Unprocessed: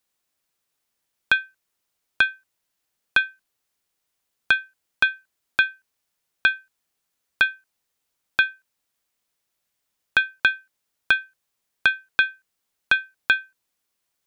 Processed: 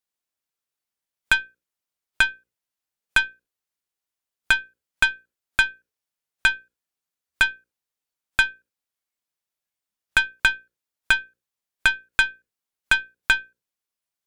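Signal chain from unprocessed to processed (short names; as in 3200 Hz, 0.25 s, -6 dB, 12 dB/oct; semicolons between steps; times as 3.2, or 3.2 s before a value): notches 60/120/180/240/300/360/420/480/540 Hz; spectral noise reduction 10 dB; added harmonics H 6 -19 dB, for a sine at -4 dBFS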